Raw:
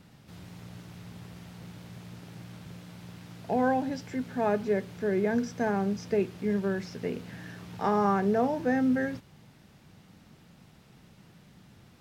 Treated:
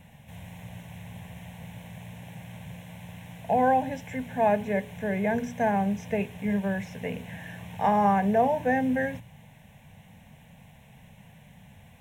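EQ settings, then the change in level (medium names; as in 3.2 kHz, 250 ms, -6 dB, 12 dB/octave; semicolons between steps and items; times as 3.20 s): hum notches 60/120/180/240/300/360/420 Hz; static phaser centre 1.3 kHz, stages 6; +7.0 dB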